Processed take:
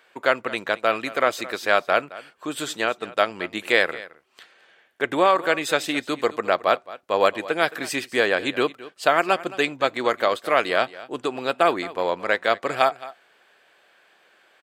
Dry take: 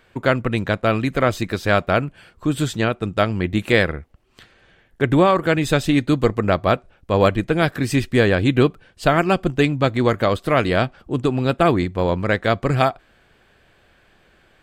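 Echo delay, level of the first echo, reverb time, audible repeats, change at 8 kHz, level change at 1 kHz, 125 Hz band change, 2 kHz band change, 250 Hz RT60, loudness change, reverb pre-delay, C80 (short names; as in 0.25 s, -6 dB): 0.218 s, -18.0 dB, none, 1, 0.0 dB, -0.5 dB, -23.0 dB, 0.0 dB, none, -3.5 dB, none, none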